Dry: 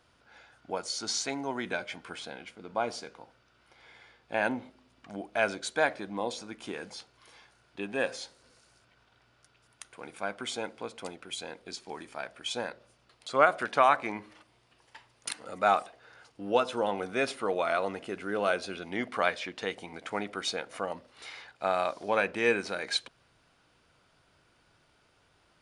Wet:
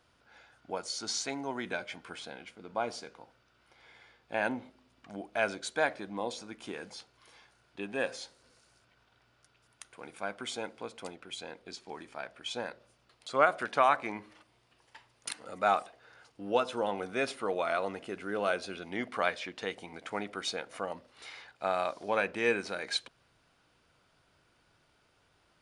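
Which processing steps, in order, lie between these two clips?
0:11.10–0:12.66: high-shelf EQ 9,400 Hz −10 dB
level −2.5 dB

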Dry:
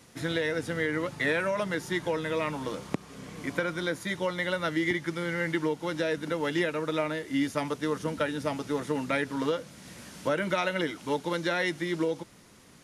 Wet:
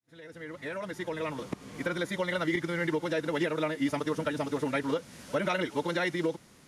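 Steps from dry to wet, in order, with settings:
fade in at the beginning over 3.43 s
echo ahead of the sound 98 ms −22.5 dB
phase-vocoder stretch with locked phases 0.52×

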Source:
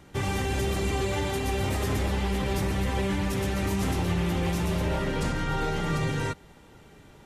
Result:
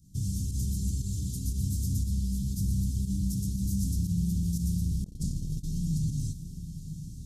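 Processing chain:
fake sidechain pumping 118 BPM, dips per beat 1, −10 dB, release 67 ms
inverse Chebyshev band-stop filter 550–2,100 Hz, stop band 60 dB
feedback delay with all-pass diffusion 963 ms, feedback 53%, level −11 dB
0:05.04–0:05.64: noise gate −29 dBFS, range −25 dB

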